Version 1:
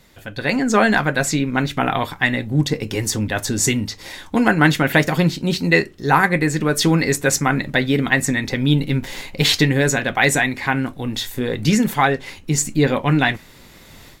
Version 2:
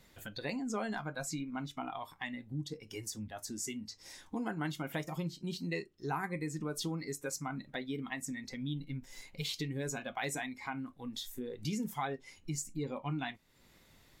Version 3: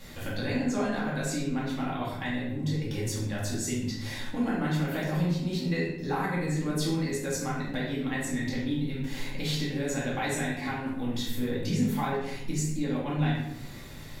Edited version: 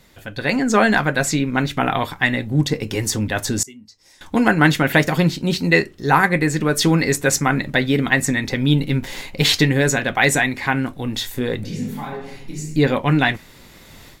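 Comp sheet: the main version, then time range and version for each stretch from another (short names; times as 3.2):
1
3.63–4.21 from 2
11.64–12.76 from 3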